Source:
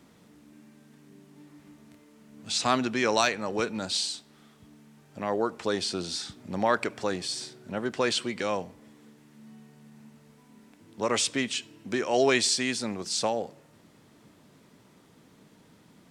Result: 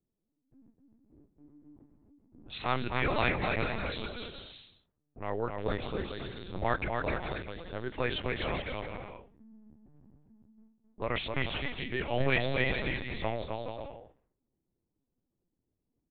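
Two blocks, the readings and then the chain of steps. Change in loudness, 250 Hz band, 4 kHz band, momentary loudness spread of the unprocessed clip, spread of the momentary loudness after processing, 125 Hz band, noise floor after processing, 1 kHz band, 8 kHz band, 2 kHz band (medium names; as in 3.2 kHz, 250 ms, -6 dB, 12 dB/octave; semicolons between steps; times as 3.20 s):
-5.5 dB, -6.0 dB, -9.5 dB, 10 LU, 15 LU, +5.0 dB, -84 dBFS, -4.5 dB, under -40 dB, -1.0 dB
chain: level-controlled noise filter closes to 470 Hz, open at -26 dBFS; gate with hold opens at -45 dBFS; dynamic bell 2.1 kHz, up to +7 dB, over -46 dBFS, Q 3; bouncing-ball echo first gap 260 ms, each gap 0.65×, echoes 5; LPC vocoder at 8 kHz pitch kept; trim -6 dB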